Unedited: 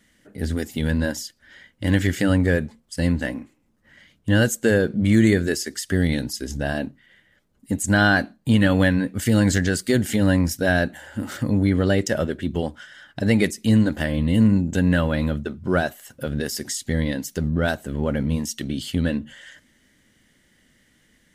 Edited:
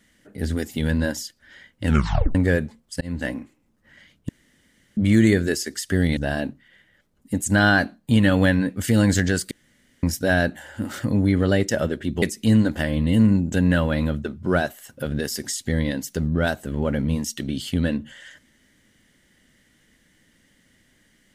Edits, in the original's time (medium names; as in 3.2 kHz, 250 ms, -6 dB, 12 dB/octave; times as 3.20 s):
1.84 s: tape stop 0.51 s
3.01–3.27 s: fade in
4.29–4.97 s: room tone
6.17–6.55 s: delete
9.89–10.41 s: room tone
12.60–13.43 s: delete